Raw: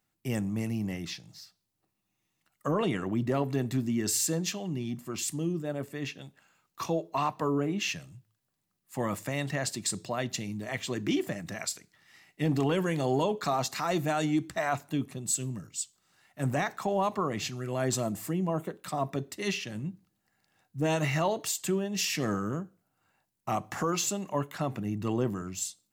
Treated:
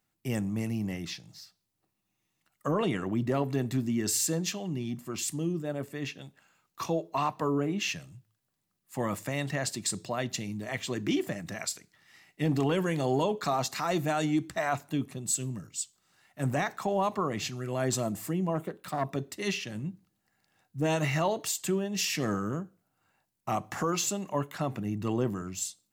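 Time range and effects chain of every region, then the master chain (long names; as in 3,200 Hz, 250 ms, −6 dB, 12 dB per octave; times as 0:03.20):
0:18.55–0:19.09: phase distortion by the signal itself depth 0.12 ms + parametric band 6,200 Hz −3.5 dB 0.71 octaves
whole clip: no processing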